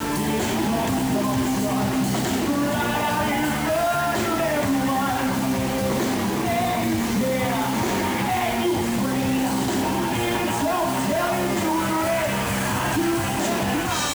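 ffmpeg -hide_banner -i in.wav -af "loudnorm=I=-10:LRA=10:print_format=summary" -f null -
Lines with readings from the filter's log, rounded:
Input Integrated:    -22.6 LUFS
Input True Peak:     -11.3 dBTP
Input LRA:             0.3 LU
Input Threshold:     -32.6 LUFS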